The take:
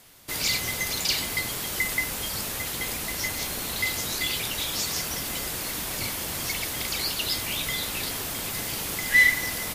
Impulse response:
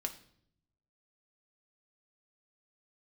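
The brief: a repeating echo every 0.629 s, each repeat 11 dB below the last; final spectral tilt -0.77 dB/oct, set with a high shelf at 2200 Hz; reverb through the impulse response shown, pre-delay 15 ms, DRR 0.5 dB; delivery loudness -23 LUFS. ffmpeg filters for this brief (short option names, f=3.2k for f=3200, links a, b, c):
-filter_complex "[0:a]highshelf=f=2.2k:g=3.5,aecho=1:1:629|1258|1887:0.282|0.0789|0.0221,asplit=2[a][b];[1:a]atrim=start_sample=2205,adelay=15[c];[b][c]afir=irnorm=-1:irlink=0,volume=-0.5dB[d];[a][d]amix=inputs=2:normalize=0,volume=-2.5dB"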